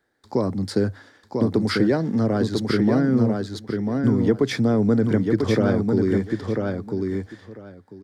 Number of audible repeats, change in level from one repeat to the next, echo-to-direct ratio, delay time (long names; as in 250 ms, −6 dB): 2, −15.5 dB, −4.0 dB, 995 ms